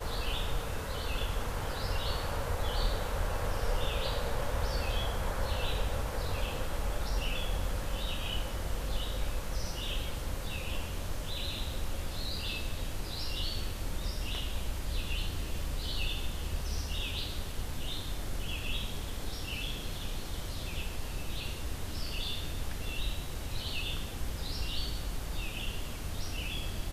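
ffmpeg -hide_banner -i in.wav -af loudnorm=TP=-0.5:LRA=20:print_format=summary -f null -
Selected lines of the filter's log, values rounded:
Input Integrated:    -36.7 LUFS
Input True Peak:     -17.6 dBTP
Input LRA:             3.7 LU
Input Threshold:     -46.7 LUFS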